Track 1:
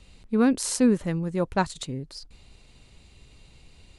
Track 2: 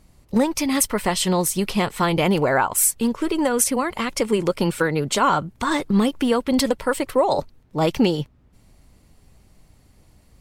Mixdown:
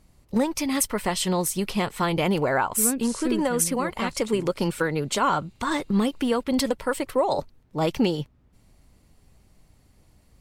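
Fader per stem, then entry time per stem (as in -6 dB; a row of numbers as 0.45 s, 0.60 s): -7.5 dB, -4.0 dB; 2.45 s, 0.00 s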